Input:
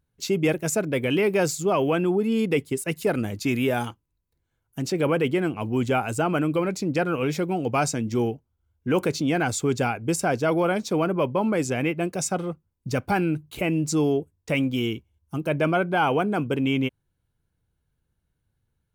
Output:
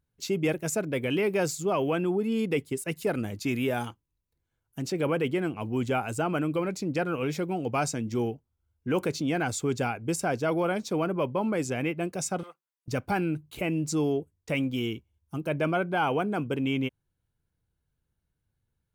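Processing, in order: 12.43–12.88 HPF 990 Hz 12 dB/oct; gain -4.5 dB

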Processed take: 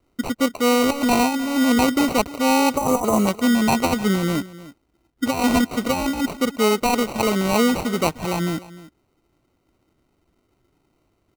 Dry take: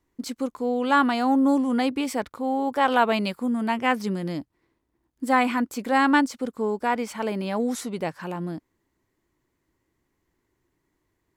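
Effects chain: sample-and-hold 26×; spectral repair 2.79–3.25, 1300–5800 Hz before; negative-ratio compressor -23 dBFS, ratio -0.5; echo 0.304 s -18 dB; gain +6 dB

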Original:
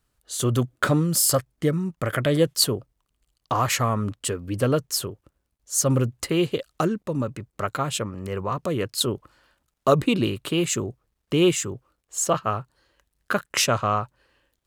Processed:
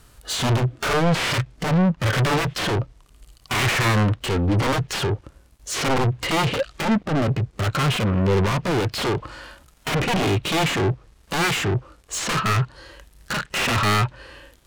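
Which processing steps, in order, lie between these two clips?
sine folder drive 19 dB, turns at -5 dBFS; treble ducked by the level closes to 2700 Hz, closed at -7.5 dBFS; dynamic EQ 2800 Hz, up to +5 dB, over -26 dBFS, Q 0.93; soft clip -17.5 dBFS, distortion -8 dB; harmonic-percussive split percussive -11 dB; gain +2 dB

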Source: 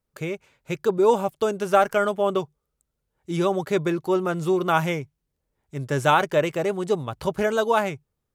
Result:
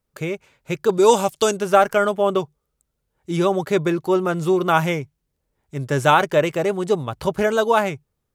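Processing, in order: 0.89–1.57 bell 6600 Hz +13.5 dB 2.6 oct; gain +3.5 dB

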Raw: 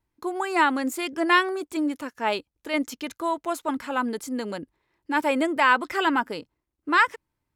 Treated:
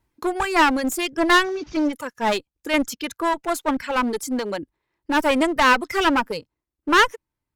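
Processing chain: 1.44–1.93 delta modulation 32 kbps, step -39.5 dBFS; reverb removal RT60 2 s; one-sided clip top -31 dBFS; gain +7.5 dB

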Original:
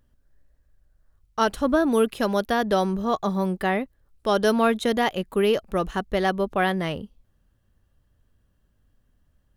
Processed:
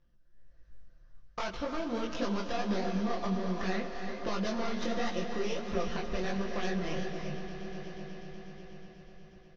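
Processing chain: tracing distortion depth 0.39 ms; elliptic low-pass 6000 Hz, stop band 40 dB; notch 840 Hz, Q 12; comb 5.8 ms, depth 77%; AGC gain up to 10 dB; limiter -11.5 dBFS, peak gain reduction 10 dB; compressor 5:1, threshold -27 dBFS, peak gain reduction 11 dB; swelling echo 0.122 s, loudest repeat 5, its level -17 dB; non-linear reverb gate 0.4 s rising, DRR 5.5 dB; detuned doubles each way 48 cents; gain -2.5 dB

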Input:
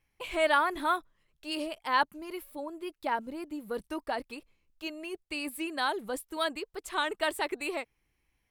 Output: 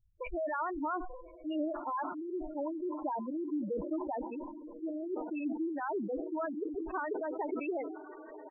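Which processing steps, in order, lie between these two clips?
downsampling 8000 Hz; low-pass opened by the level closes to 310 Hz, open at -28.5 dBFS; dynamic EQ 2900 Hz, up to -7 dB, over -47 dBFS, Q 1.1; in parallel at -1.5 dB: compressor 8:1, threshold -43 dBFS, peak gain reduction 20.5 dB; on the sum: limiter -25.5 dBFS, peak gain reduction 10.5 dB; air absorption 93 m; on a send: diffused feedback echo 1.203 s, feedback 54%, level -12 dB; on the sum: FDN reverb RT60 0.52 s, low-frequency decay 0.75×, high-frequency decay 0.45×, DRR 18.5 dB; spectral gate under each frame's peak -10 dB strong; sustainer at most 56 dB/s

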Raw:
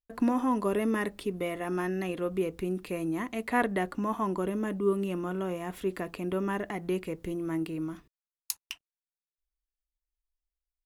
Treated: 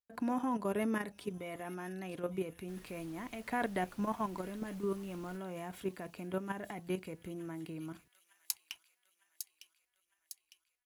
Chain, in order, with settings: HPF 83 Hz 12 dB/oct; comb 1.3 ms, depth 31%; level quantiser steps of 10 dB; 2.67–5.36 added noise pink -57 dBFS; thin delay 0.905 s, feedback 55%, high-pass 3800 Hz, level -7 dB; gain -2.5 dB

